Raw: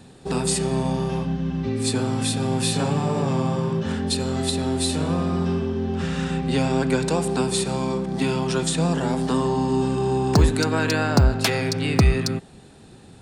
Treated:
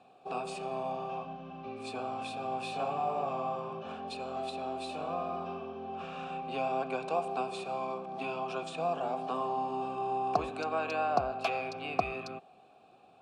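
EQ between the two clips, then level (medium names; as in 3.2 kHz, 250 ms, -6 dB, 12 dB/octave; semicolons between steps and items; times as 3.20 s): vowel filter a; +3.0 dB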